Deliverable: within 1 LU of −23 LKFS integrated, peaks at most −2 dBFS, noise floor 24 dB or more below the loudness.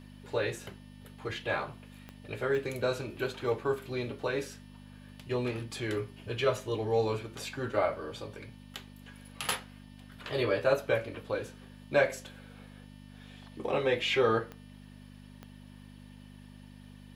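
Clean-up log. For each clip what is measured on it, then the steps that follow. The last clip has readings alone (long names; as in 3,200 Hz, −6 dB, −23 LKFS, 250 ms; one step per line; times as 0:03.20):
number of clicks 4; mains hum 50 Hz; hum harmonics up to 250 Hz; level of the hum −48 dBFS; integrated loudness −32.5 LKFS; sample peak −12.5 dBFS; target loudness −23.0 LKFS
→ click removal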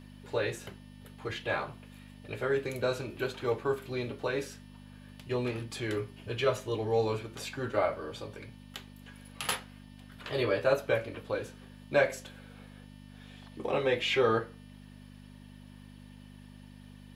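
number of clicks 0; mains hum 50 Hz; hum harmonics up to 250 Hz; level of the hum −48 dBFS
→ hum removal 50 Hz, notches 5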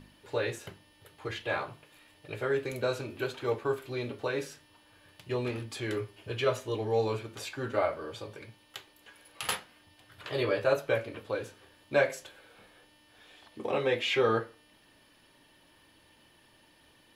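mains hum none found; integrated loudness −32.5 LKFS; sample peak −12.5 dBFS; target loudness −23.0 LKFS
→ level +9.5 dB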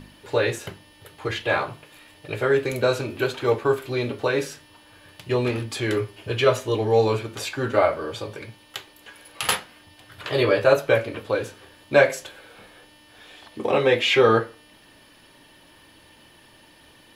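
integrated loudness −23.0 LKFS; sample peak −3.0 dBFS; background noise floor −53 dBFS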